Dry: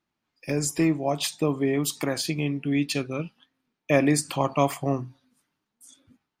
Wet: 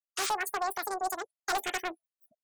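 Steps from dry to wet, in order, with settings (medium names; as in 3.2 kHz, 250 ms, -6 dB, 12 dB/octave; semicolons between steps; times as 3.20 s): painted sound noise, 0.45–0.78 s, 410–3600 Hz -26 dBFS; spectral noise reduction 28 dB; wide varispeed 2.63×; wavefolder -16.5 dBFS; loudspeaker Doppler distortion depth 0.27 ms; trim -6 dB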